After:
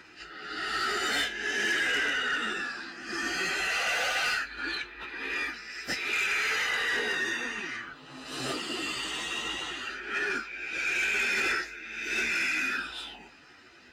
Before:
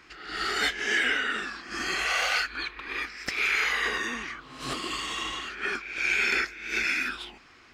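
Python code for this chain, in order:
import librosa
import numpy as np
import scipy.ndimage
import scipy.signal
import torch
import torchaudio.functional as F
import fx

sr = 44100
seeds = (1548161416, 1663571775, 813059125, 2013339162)

y = fx.stretch_vocoder_free(x, sr, factor=1.8)
y = fx.notch_comb(y, sr, f0_hz=1100.0)
y = 10.0 ** (-27.5 / 20.0) * np.tanh(y / 10.0 ** (-27.5 / 20.0))
y = y * librosa.db_to_amplitude(4.5)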